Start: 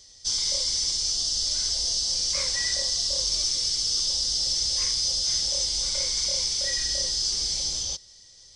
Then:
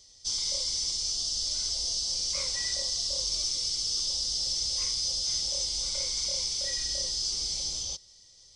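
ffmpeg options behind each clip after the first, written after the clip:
ffmpeg -i in.wav -af "equalizer=frequency=1700:width_type=o:width=0.2:gain=-12.5,volume=-4.5dB" out.wav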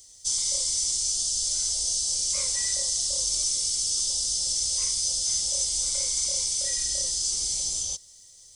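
ffmpeg -i in.wav -af "aexciter=amount=10.5:drive=2.1:freq=7200" out.wav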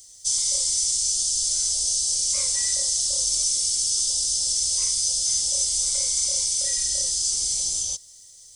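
ffmpeg -i in.wav -af "highshelf=frequency=7000:gain=7" out.wav

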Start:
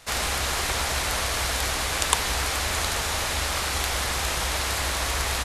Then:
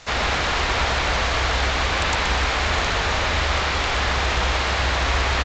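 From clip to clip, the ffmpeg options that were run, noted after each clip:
ffmpeg -i in.wav -filter_complex "[0:a]acrossover=split=4200[link_01][link_02];[link_02]acompressor=threshold=-47dB:ratio=4:attack=1:release=60[link_03];[link_01][link_03]amix=inputs=2:normalize=0,aresample=16000,aeval=exprs='0.0891*(abs(mod(val(0)/0.0891+3,4)-2)-1)':channel_layout=same,aresample=44100,aecho=1:1:125:0.473,volume=6dB" out.wav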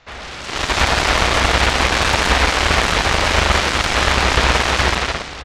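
ffmpeg -i in.wav -af "lowpass=3500,dynaudnorm=framelen=120:gausssize=9:maxgain=8dB,aeval=exprs='0.794*(cos(1*acos(clip(val(0)/0.794,-1,1)))-cos(1*PI/2))+0.178*(cos(7*acos(clip(val(0)/0.794,-1,1)))-cos(7*PI/2))':channel_layout=same" out.wav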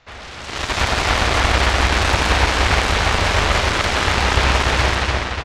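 ffmpeg -i in.wav -filter_complex "[0:a]equalizer=frequency=92:width_type=o:width=0.46:gain=6,asplit=2[link_01][link_02];[link_02]adelay=293,lowpass=frequency=3600:poles=1,volume=-3dB,asplit=2[link_03][link_04];[link_04]adelay=293,lowpass=frequency=3600:poles=1,volume=0.49,asplit=2[link_05][link_06];[link_06]adelay=293,lowpass=frequency=3600:poles=1,volume=0.49,asplit=2[link_07][link_08];[link_08]adelay=293,lowpass=frequency=3600:poles=1,volume=0.49,asplit=2[link_09][link_10];[link_10]adelay=293,lowpass=frequency=3600:poles=1,volume=0.49,asplit=2[link_11][link_12];[link_12]adelay=293,lowpass=frequency=3600:poles=1,volume=0.49[link_13];[link_03][link_05][link_07][link_09][link_11][link_13]amix=inputs=6:normalize=0[link_14];[link_01][link_14]amix=inputs=2:normalize=0,volume=-3.5dB" out.wav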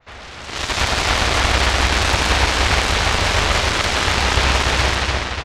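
ffmpeg -i in.wav -af "adynamicequalizer=threshold=0.0282:dfrequency=2800:dqfactor=0.7:tfrequency=2800:tqfactor=0.7:attack=5:release=100:ratio=0.375:range=2:mode=boostabove:tftype=highshelf,volume=-1dB" out.wav

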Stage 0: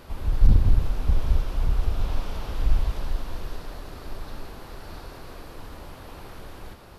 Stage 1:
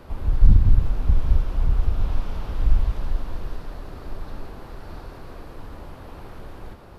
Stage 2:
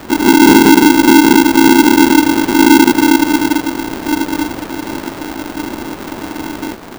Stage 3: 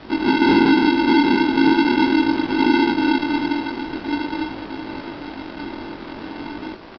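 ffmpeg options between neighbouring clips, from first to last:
ffmpeg -i in.wav -filter_complex "[0:a]highshelf=frequency=2100:gain=-10,acrossover=split=290|930[link_01][link_02][link_03];[link_02]alimiter=level_in=17dB:limit=-24dB:level=0:latency=1:release=399,volume=-17dB[link_04];[link_01][link_04][link_03]amix=inputs=3:normalize=0,volume=3dB" out.wav
ffmpeg -i in.wav -af "asoftclip=type=tanh:threshold=-6.5dB,alimiter=level_in=14dB:limit=-1dB:release=50:level=0:latency=1,aeval=exprs='val(0)*sgn(sin(2*PI*300*n/s))':channel_layout=same,volume=-1dB" out.wav
ffmpeg -i in.wav -af "aresample=11025,acrusher=bits=6:mix=0:aa=0.000001,aresample=44100,flanger=delay=18.5:depth=5.6:speed=0.43,aecho=1:1:910:0.188,volume=-5.5dB" out.wav

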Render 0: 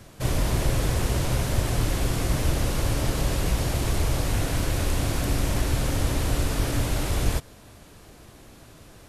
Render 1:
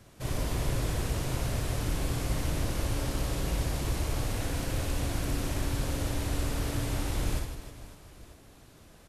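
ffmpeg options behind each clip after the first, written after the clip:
ffmpeg -i in.wav -af "aecho=1:1:60|156|309.6|555.4|948.6:0.631|0.398|0.251|0.158|0.1,volume=-8.5dB" out.wav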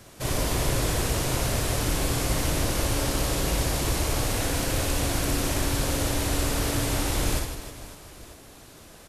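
ffmpeg -i in.wav -af "bass=frequency=250:gain=-5,treble=frequency=4000:gain=3,volume=8dB" out.wav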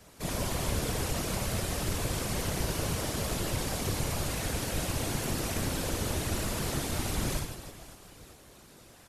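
ffmpeg -i in.wav -af "afftfilt=real='hypot(re,im)*cos(2*PI*random(0))':imag='hypot(re,im)*sin(2*PI*random(1))':win_size=512:overlap=0.75" out.wav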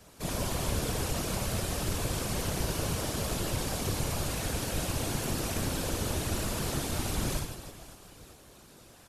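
ffmpeg -i in.wav -af "equalizer=frequency=2000:width=5.5:gain=-3.5" out.wav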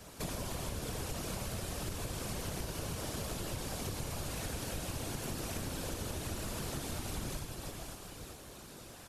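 ffmpeg -i in.wav -af "acompressor=threshold=-40dB:ratio=6,volume=3.5dB" out.wav

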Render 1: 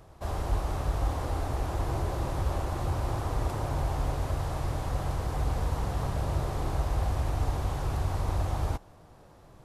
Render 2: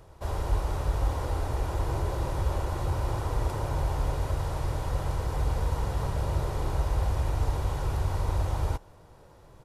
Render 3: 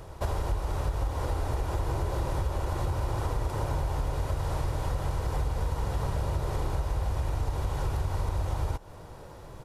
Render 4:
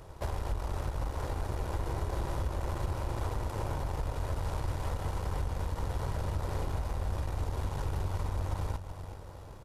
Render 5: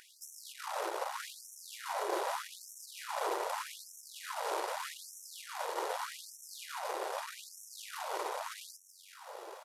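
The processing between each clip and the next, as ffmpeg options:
ffmpeg -i in.wav -af "aecho=1:1:2.1:0.31" out.wav
ffmpeg -i in.wav -af "acompressor=threshold=-34dB:ratio=6,volume=8dB" out.wav
ffmpeg -i in.wav -af "aecho=1:1:377|754|1131|1508|1885|2262:0.282|0.149|0.0792|0.042|0.0222|0.0118,aeval=exprs='0.15*(cos(1*acos(clip(val(0)/0.15,-1,1)))-cos(1*PI/2))+0.0119*(cos(8*acos(clip(val(0)/0.15,-1,1)))-cos(8*PI/2))':channel_layout=same,volume=-5dB" out.wav
ffmpeg -i in.wav -af "afftfilt=real='re*gte(b*sr/1024,320*pow(5500/320,0.5+0.5*sin(2*PI*0.82*pts/sr)))':imag='im*gte(b*sr/1024,320*pow(5500/320,0.5+0.5*sin(2*PI*0.82*pts/sr)))':win_size=1024:overlap=0.75,volume=6.5dB" out.wav

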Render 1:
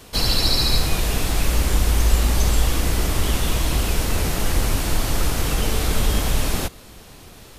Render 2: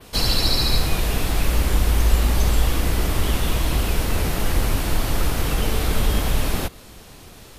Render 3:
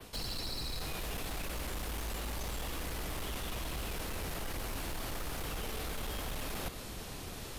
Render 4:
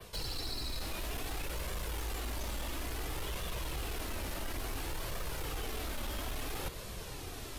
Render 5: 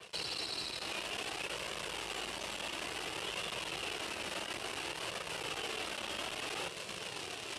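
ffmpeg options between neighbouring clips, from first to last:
ffmpeg -i in.wav -af "adynamicequalizer=threshold=0.0158:dfrequency=7000:dqfactor=0.92:tfrequency=7000:tqfactor=0.92:attack=5:release=100:ratio=0.375:range=2.5:mode=cutabove:tftype=bell" out.wav
ffmpeg -i in.wav -filter_complex "[0:a]acrossover=split=160|420[link_01][link_02][link_03];[link_01]acompressor=threshold=-26dB:ratio=4[link_04];[link_02]acompressor=threshold=-36dB:ratio=4[link_05];[link_03]acompressor=threshold=-26dB:ratio=4[link_06];[link_04][link_05][link_06]amix=inputs=3:normalize=0,volume=23dB,asoftclip=hard,volume=-23dB,areverse,acompressor=threshold=-37dB:ratio=6,areverse" out.wav
ffmpeg -i in.wav -af "flanger=delay=1.7:depth=1.8:regen=-36:speed=0.58:shape=triangular,volume=3.5dB" out.wav
ffmpeg -i in.wav -af "asoftclip=type=tanh:threshold=-35dB,acrusher=bits=8:dc=4:mix=0:aa=0.000001,highpass=210,equalizer=frequency=260:width_type=q:width=4:gain=-8,equalizer=frequency=2800:width_type=q:width=4:gain=8,equalizer=frequency=6700:width_type=q:width=4:gain=-4,lowpass=frequency=9100:width=0.5412,lowpass=frequency=9100:width=1.3066,volume=3dB" out.wav

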